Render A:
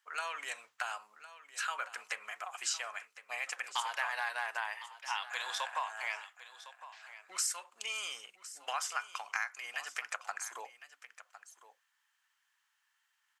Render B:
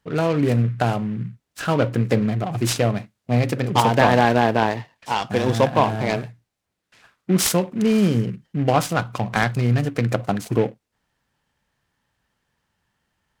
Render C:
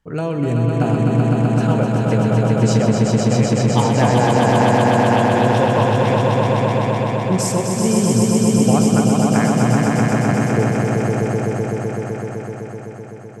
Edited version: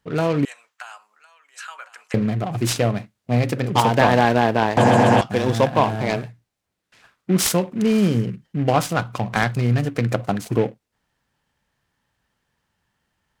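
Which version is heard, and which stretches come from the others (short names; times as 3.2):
B
0.45–2.14 from A
4.77–5.21 from C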